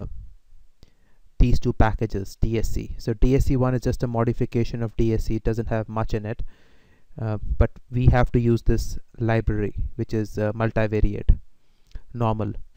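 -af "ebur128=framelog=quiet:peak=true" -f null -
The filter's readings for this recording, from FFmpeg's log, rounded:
Integrated loudness:
  I:         -24.5 LUFS
  Threshold: -35.3 LUFS
Loudness range:
  LRA:         3.4 LU
  Threshold: -44.9 LUFS
  LRA low:   -27.1 LUFS
  LRA high:  -23.7 LUFS
True peak:
  Peak:       -6.1 dBFS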